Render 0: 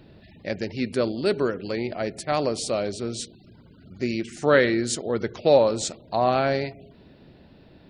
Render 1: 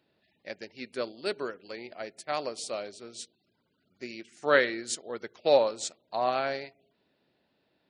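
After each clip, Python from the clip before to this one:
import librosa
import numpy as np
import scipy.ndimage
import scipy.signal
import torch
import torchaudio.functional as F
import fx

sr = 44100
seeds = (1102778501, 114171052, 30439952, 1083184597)

y = fx.highpass(x, sr, hz=690.0, slope=6)
y = fx.upward_expand(y, sr, threshold_db=-46.0, expansion=1.5)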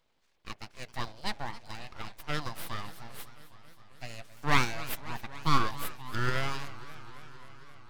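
y = np.abs(x)
y = fx.echo_warbled(y, sr, ms=267, feedback_pct=77, rate_hz=2.8, cents=192, wet_db=-17)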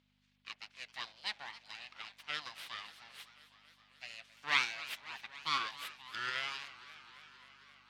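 y = fx.add_hum(x, sr, base_hz=50, snr_db=15)
y = fx.bandpass_q(y, sr, hz=3000.0, q=1.2)
y = y * 10.0 ** (1.0 / 20.0)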